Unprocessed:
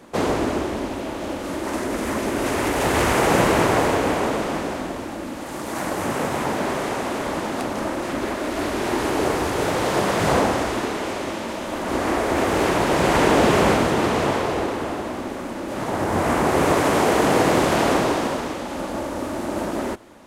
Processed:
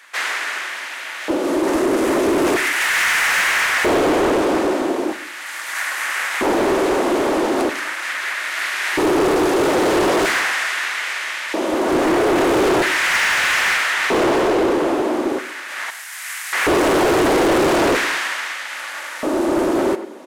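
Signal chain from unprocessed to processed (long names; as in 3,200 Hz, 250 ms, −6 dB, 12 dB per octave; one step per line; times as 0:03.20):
0:15.90–0:16.53: first difference
far-end echo of a speakerphone 100 ms, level −13 dB
auto-filter high-pass square 0.39 Hz 340–1,800 Hz
on a send at −12.5 dB: convolution reverb RT60 0.55 s, pre-delay 3 ms
on the sum: gain into a clipping stage and back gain 18.5 dB
level +5 dB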